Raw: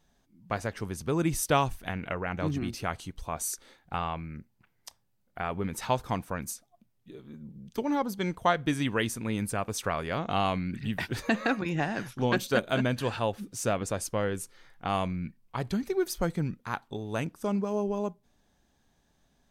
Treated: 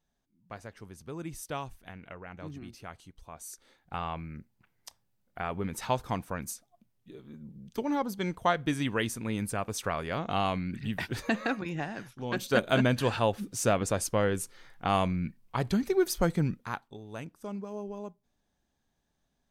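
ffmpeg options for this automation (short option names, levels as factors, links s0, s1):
-af "volume=3.55,afade=t=in:st=3.45:d=0.74:silence=0.298538,afade=t=out:st=11.21:d=1.04:silence=0.375837,afade=t=in:st=12.25:d=0.42:silence=0.237137,afade=t=out:st=16.5:d=0.4:silence=0.266073"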